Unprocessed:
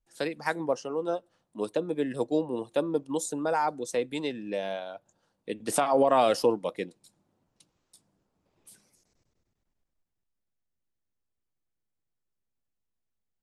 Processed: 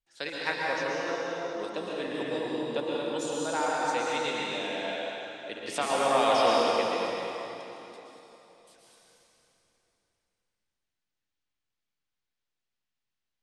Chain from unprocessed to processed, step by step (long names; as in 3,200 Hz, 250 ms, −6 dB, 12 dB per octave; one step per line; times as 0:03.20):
delay that plays each chunk backwards 126 ms, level −7 dB
low-pass filter 4,200 Hz 12 dB per octave
tilt shelving filter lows −8 dB, about 1,200 Hz
dense smooth reverb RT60 3.4 s, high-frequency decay 0.85×, pre-delay 105 ms, DRR −4.5 dB
level −3 dB